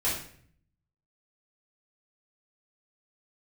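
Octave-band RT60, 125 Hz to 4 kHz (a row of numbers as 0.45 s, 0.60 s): 1.0 s, 0.85 s, 0.60 s, 0.50 s, 0.55 s, 0.45 s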